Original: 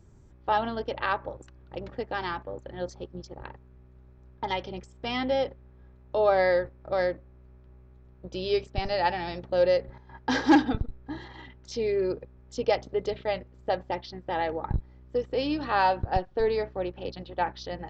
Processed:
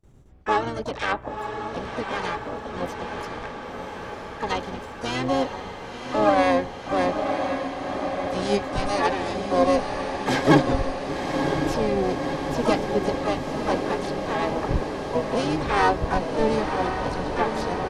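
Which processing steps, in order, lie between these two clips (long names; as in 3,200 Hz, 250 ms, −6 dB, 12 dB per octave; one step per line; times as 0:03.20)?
pitch-shifted copies added −12 semitones −4 dB, +5 semitones −5 dB, +12 semitones −9 dB
noise gate with hold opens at −44 dBFS
feedback delay with all-pass diffusion 1,026 ms, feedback 76%, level −6 dB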